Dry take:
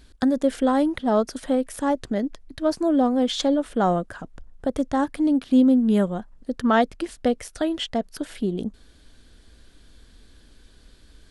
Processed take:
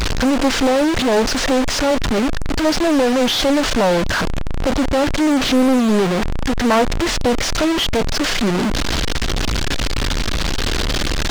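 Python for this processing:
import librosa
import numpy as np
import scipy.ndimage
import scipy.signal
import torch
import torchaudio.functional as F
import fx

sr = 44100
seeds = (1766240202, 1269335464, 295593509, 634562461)

y = fx.delta_mod(x, sr, bps=32000, step_db=-22.5)
y = fx.power_curve(y, sr, exponent=0.5)
y = fx.doppler_dist(y, sr, depth_ms=0.66)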